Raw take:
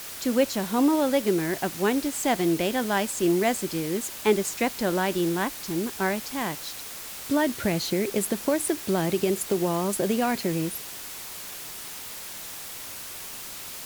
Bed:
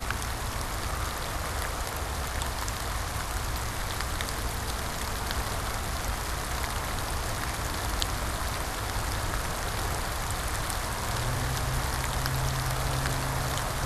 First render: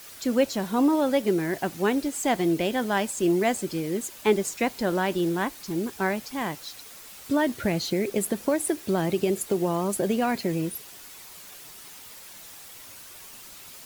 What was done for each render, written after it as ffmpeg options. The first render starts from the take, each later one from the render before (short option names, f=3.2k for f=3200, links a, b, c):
-af "afftdn=nr=8:nf=-39"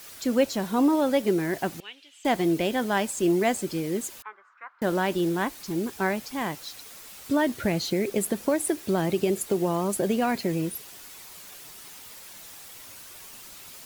-filter_complex "[0:a]asettb=1/sr,asplit=3[a][b][c];[a]atrim=end=1.804[d];[b]atrim=start=1.8:end=2.25,asetpts=PTS-STARTPTS,afade=t=in:d=0.004:c=qsin,afade=t=out:st=0.446:d=0.004:c=qsin,bandpass=f=3k:t=q:w=4.9[e];[c]atrim=start=2.246[f];[d][e]acrossfade=d=0.004:c1=hsin:c2=qsin[g];[g][f]acrossfade=d=0.004:c1=qsin:c2=hsin,asettb=1/sr,asplit=3[h][i][j];[h]atrim=end=4.224[k];[i]atrim=start=4.22:end=4.82,asetpts=PTS-STARTPTS,afade=t=in:d=0.004:c=qsin,afade=t=out:st=0.596:d=0.004:c=qsin,asuperpass=centerf=1300:order=4:qfactor=2.8[l];[j]atrim=start=4.816[m];[k][l]acrossfade=d=0.004:c1=hsin:c2=qsin[n];[n][m]acrossfade=d=0.004:c1=qsin:c2=hsin"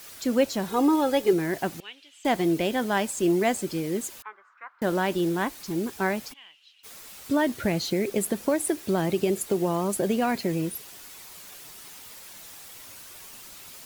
-filter_complex "[0:a]asettb=1/sr,asplit=3[a][b][c];[a]atrim=end=0.684[d];[b]atrim=start=0.68:end=1.33,asetpts=PTS-STARTPTS,afade=t=in:d=0.004:c=qsin,afade=t=out:st=0.646:d=0.004:c=qsin,aecho=1:1:2.4:0.65,atrim=end_sample=28665[e];[c]atrim=start=1.326[f];[d][e]acrossfade=d=0.004:c1=hsin:c2=qsin[g];[g][f]acrossfade=d=0.004:c1=qsin:c2=hsin,asplit=3[h][i][j];[h]afade=t=out:st=6.32:d=0.02[k];[i]bandpass=f=2.9k:t=q:w=10,afade=t=in:st=6.32:d=0.02,afade=t=out:st=6.83:d=0.02[l];[j]afade=t=in:st=6.83:d=0.02[m];[k][l][m]amix=inputs=3:normalize=0"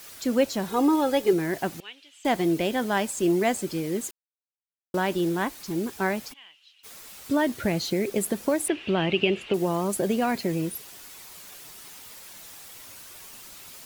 -filter_complex "[0:a]asettb=1/sr,asplit=3[a][b][c];[a]atrim=end=8.684[d];[b]atrim=start=8.68:end=9.54,asetpts=PTS-STARTPTS,afade=t=in:d=0.004:c=qsin,afade=t=out:st=0.856:d=0.004:c=qsin,lowpass=f=2.8k:t=q:w=7.7[e];[c]atrim=start=9.536[f];[d][e]acrossfade=d=0.004:c1=hsin:c2=qsin[g];[g][f]acrossfade=d=0.004:c1=qsin:c2=hsin,asplit=3[h][i][j];[h]atrim=end=4.11,asetpts=PTS-STARTPTS,afade=t=out:st=4.106:d=0.004:c=hsin[k];[i]atrim=start=4.11:end=4.94,asetpts=PTS-STARTPTS,volume=0[l];[j]atrim=start=4.94,asetpts=PTS-STARTPTS,afade=t=in:d=0.004:c=hsin[m];[k][l][m]concat=n=3:v=0:a=1"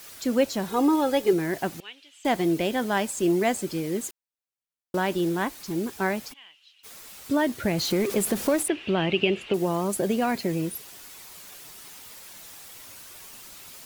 -filter_complex "[0:a]asettb=1/sr,asplit=3[a][b][c];[a]atrim=end=7.784[d];[b]atrim=start=7.78:end=8.63,asetpts=PTS-STARTPTS,afade=t=in:d=0.004:c=qsin,afade=t=out:st=0.846:d=0.004:c=qsin,aeval=exprs='val(0)+0.5*0.0299*sgn(val(0))':c=same[e];[c]atrim=start=8.626[f];[d][e]acrossfade=d=0.004:c1=hsin:c2=qsin[g];[g][f]acrossfade=d=0.004:c1=qsin:c2=hsin"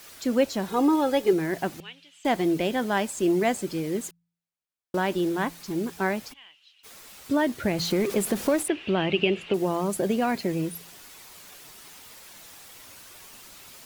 -af "highshelf=f=6.1k:g=-4,bandreject=f=56.63:t=h:w=4,bandreject=f=113.26:t=h:w=4,bandreject=f=169.89:t=h:w=4"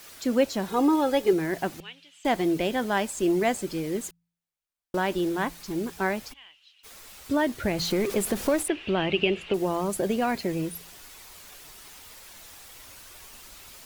-af "asubboost=boost=3:cutoff=80"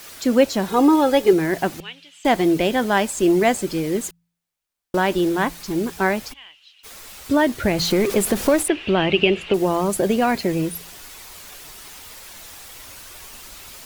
-af "volume=7dB"